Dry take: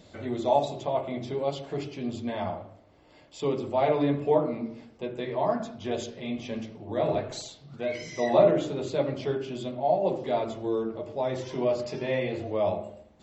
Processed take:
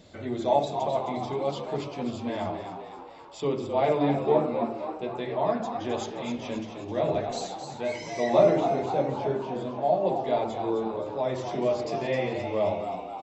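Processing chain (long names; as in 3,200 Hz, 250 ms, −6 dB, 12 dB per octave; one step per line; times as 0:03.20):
0:08.60–0:09.83: high-shelf EQ 2,300 Hz −10.5 dB
echo with shifted repeats 262 ms, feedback 55%, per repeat +82 Hz, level −8 dB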